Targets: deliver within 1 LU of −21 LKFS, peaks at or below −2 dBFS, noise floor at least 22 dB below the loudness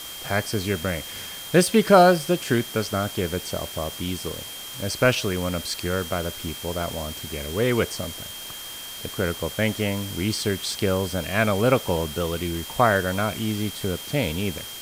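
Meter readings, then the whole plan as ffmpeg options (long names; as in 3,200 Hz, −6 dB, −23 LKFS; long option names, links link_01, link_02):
interfering tone 3,200 Hz; level of the tone −38 dBFS; background noise floor −37 dBFS; target noise floor −47 dBFS; integrated loudness −24.5 LKFS; sample peak −2.0 dBFS; target loudness −21.0 LKFS
→ -af "bandreject=frequency=3200:width=30"
-af "afftdn=noise_reduction=10:noise_floor=-37"
-af "volume=3.5dB,alimiter=limit=-2dB:level=0:latency=1"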